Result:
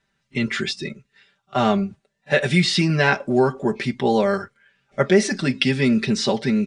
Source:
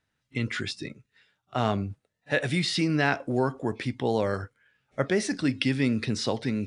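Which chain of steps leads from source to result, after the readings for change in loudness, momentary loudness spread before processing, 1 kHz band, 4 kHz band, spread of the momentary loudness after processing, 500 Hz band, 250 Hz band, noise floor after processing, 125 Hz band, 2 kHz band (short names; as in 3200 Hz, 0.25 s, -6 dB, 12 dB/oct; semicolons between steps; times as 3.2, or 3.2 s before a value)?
+7.0 dB, 10 LU, +7.0 dB, +7.5 dB, 11 LU, +8.0 dB, +7.0 dB, -74 dBFS, +5.5 dB, +7.0 dB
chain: LPF 8900 Hz 24 dB/oct; comb 5.1 ms, depth 87%; gain +5 dB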